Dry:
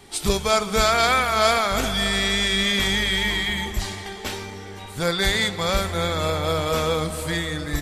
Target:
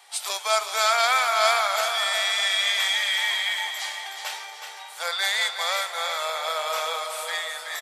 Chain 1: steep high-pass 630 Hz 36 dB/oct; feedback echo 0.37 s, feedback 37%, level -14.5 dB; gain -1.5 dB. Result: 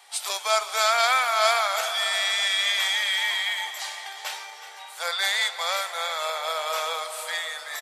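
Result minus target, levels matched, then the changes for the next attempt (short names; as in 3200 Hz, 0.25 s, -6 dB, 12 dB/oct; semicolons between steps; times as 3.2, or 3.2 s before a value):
echo-to-direct -7 dB
change: feedback echo 0.37 s, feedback 37%, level -7.5 dB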